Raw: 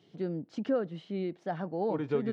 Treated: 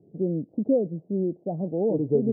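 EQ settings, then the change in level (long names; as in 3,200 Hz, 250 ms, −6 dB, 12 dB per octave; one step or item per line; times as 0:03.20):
Butterworth low-pass 630 Hz 36 dB per octave
high-frequency loss of the air 480 metres
+8.5 dB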